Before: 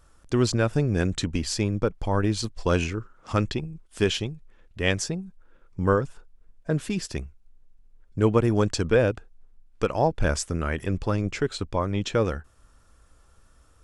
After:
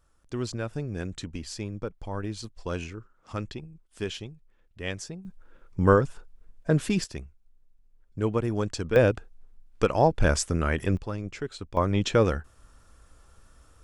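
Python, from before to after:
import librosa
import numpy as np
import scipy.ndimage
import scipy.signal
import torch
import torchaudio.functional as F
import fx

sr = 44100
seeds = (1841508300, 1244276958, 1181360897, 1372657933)

y = fx.gain(x, sr, db=fx.steps((0.0, -9.5), (5.25, 2.5), (7.04, -6.0), (8.96, 1.5), (10.97, -8.0), (11.77, 2.0)))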